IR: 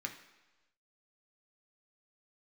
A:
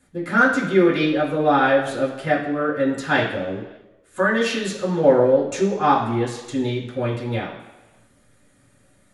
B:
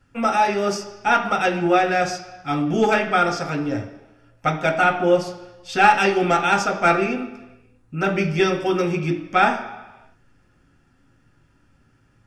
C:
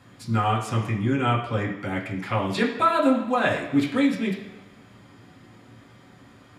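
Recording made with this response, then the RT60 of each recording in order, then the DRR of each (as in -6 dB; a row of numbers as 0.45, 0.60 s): B; 1.1, 1.1, 1.1 s; -9.0, 2.5, -3.5 dB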